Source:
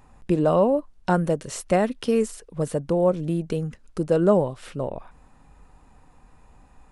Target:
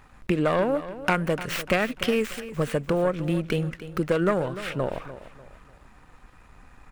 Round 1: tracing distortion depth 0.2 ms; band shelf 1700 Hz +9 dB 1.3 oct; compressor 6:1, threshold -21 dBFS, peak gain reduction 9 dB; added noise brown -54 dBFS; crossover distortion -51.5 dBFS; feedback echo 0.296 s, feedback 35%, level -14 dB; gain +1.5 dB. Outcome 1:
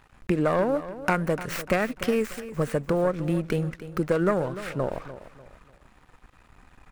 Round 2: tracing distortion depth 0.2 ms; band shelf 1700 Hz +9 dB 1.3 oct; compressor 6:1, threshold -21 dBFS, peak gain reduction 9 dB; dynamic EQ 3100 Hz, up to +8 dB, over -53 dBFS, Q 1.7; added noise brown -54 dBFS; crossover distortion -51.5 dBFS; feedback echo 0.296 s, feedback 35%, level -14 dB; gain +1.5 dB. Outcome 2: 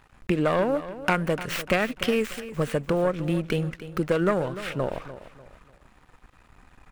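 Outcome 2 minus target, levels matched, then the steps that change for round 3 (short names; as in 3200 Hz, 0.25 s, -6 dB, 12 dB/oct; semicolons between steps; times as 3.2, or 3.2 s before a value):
crossover distortion: distortion +6 dB
change: crossover distortion -58.5 dBFS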